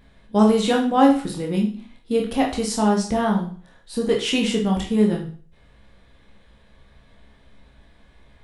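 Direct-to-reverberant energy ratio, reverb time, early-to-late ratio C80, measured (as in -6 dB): -1.0 dB, 0.45 s, 12.5 dB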